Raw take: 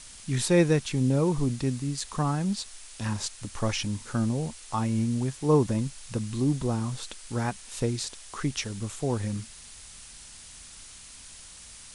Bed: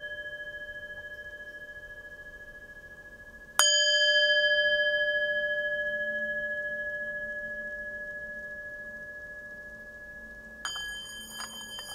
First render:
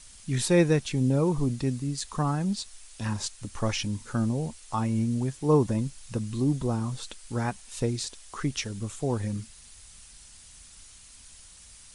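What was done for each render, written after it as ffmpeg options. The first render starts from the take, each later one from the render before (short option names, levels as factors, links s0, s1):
-af "afftdn=nr=6:nf=-47"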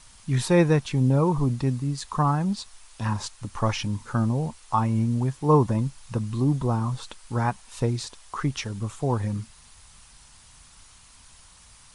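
-af "equalizer=f=125:t=o:w=1:g=5,equalizer=f=1000:t=o:w=1:g=9,equalizer=f=8000:t=o:w=1:g=-4"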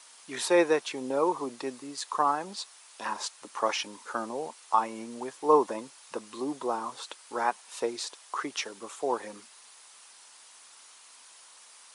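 -af "highpass=f=360:w=0.5412,highpass=f=360:w=1.3066"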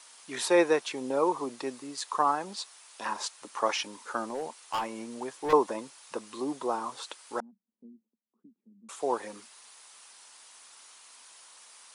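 -filter_complex "[0:a]asettb=1/sr,asplit=3[s0][s1][s2];[s0]atrim=end=4.244[s3];[s1]atrim=start=4.24:end=5.53,asetpts=PTS-STARTPTS,afade=t=in:d=0.004:c=qsin,afade=t=out:st=1.286:d=0.004:c=qsin,asoftclip=type=hard:threshold=0.0447[s4];[s2]atrim=start=5.526[s5];[s3][s4]acrossfade=d=0.004:c1=hsin:c2=qsin[s6];[s6][s5]acrossfade=d=0.004:c1=qsin:c2=hsin,asettb=1/sr,asplit=3[s7][s8][s9];[s7]atrim=end=7.404[s10];[s8]atrim=start=7.4:end=8.89,asetpts=PTS-STARTPTS,afade=t=in:d=0.004:c=qsin,afade=t=out:st=1.486:d=0.004:c=qsin,asuperpass=centerf=210:order=4:qfactor=4.5[s11];[s9]atrim=start=8.886[s12];[s10][s11]acrossfade=d=0.004:c1=hsin:c2=qsin[s13];[s13][s12]acrossfade=d=0.004:c1=qsin:c2=hsin"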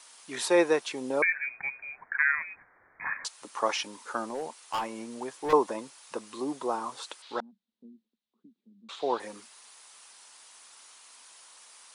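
-filter_complex "[0:a]asettb=1/sr,asplit=3[s0][s1][s2];[s0]atrim=end=1.224[s3];[s1]atrim=start=1.22:end=3.25,asetpts=PTS-STARTPTS,afade=t=in:d=0.004:c=qsin,afade=t=out:st=2.026:d=0.004:c=qsin,lowpass=f=2300:t=q:w=0.5098,lowpass=f=2300:t=q:w=0.6013,lowpass=f=2300:t=q:w=0.9,lowpass=f=2300:t=q:w=2.563,afreqshift=-2700[s4];[s2]atrim=start=3.246[s5];[s3][s4]acrossfade=d=0.004:c1=hsin:c2=qsin[s6];[s6][s5]acrossfade=d=0.004:c1=qsin:c2=hsin,asettb=1/sr,asplit=3[s7][s8][s9];[s7]atrim=end=7.224[s10];[s8]atrim=start=7.22:end=9.2,asetpts=PTS-STARTPTS,afade=t=in:d=0.004:c=qsin,afade=t=out:st=1.976:d=0.004:c=qsin,lowpass=f=3800:t=q:w=4.1[s11];[s9]atrim=start=9.196[s12];[s10][s11]acrossfade=d=0.004:c1=hsin:c2=qsin[s13];[s13][s12]acrossfade=d=0.004:c1=qsin:c2=hsin"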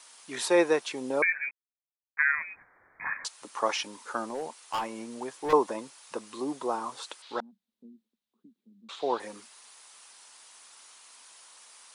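-filter_complex "[0:a]asplit=3[s0][s1][s2];[s0]atrim=end=1.51,asetpts=PTS-STARTPTS,afade=t=out:st=1.506:d=0.004:c=hsin[s3];[s1]atrim=start=1.51:end=2.17,asetpts=PTS-STARTPTS,volume=0[s4];[s2]atrim=start=2.17,asetpts=PTS-STARTPTS,afade=t=in:d=0.004:c=hsin[s5];[s3][s4][s5]concat=n=3:v=0:a=1"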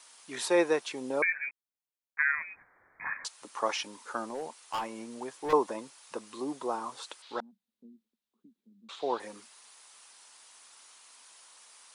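-af "volume=0.75"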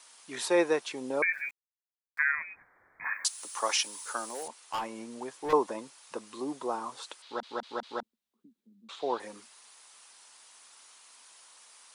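-filter_complex "[0:a]asplit=3[s0][s1][s2];[s0]afade=t=out:st=1.32:d=0.02[s3];[s1]aeval=exprs='val(0)*gte(abs(val(0)),0.00224)':c=same,afade=t=in:st=1.32:d=0.02,afade=t=out:st=2.29:d=0.02[s4];[s2]afade=t=in:st=2.29:d=0.02[s5];[s3][s4][s5]amix=inputs=3:normalize=0,asettb=1/sr,asplit=3[s6][s7][s8];[s6]atrim=end=3.044[s9];[s7]atrim=start=3.04:end=4.48,asetpts=PTS-STARTPTS,afade=t=in:d=0.004:c=qsin,afade=t=out:st=1.436:d=0.004:c=qsin,aemphasis=mode=production:type=riaa[s10];[s8]atrim=start=4.476[s11];[s9][s10]acrossfade=d=0.004:c1=hsin:c2=qsin[s12];[s12][s11]acrossfade=d=0.004:c1=qsin:c2=hsin,asplit=5[s13][s14][s15][s16][s17];[s13]atrim=end=7.432[s18];[s14]atrim=start=7.228:end=7.432[s19];[s15]atrim=start=7.228:end=7.432[s20];[s16]atrim=start=7.228:end=7.432[s21];[s17]atrim=start=8.028[s22];[s18][s19]acrossfade=d=0.004:c1=hsin:c2=hsin[s23];[s23][s20]acrossfade=d=0.004:c1=hsin:c2=hsin[s24];[s24][s21]acrossfade=d=0.004:c1=hsin:c2=hsin[s25];[s25][s22]acrossfade=d=0.004:c1=hsin:c2=hsin"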